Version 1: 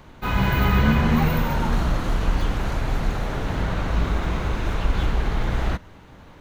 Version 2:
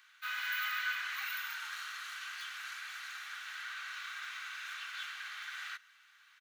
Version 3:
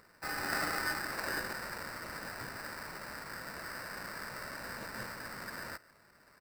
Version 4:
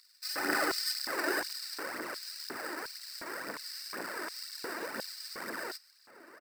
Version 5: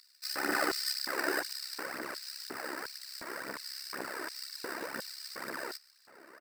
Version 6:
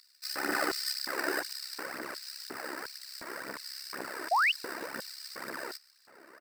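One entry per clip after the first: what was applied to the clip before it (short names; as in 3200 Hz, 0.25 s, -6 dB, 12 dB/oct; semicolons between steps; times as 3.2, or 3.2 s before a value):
Chebyshev high-pass 1400 Hz, order 4; comb 2.6 ms, depth 33%; gain -6.5 dB
high shelf 11000 Hz +11.5 dB; sample-rate reducer 3300 Hz, jitter 0%
outdoor echo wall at 130 m, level -15 dB; phaser 2 Hz, delay 3.4 ms, feedback 56%; LFO high-pass square 1.4 Hz 330–4300 Hz; gain +1.5 dB
AM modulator 67 Hz, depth 50%; gain +2.5 dB
painted sound rise, 4.31–4.52, 630–3200 Hz -25 dBFS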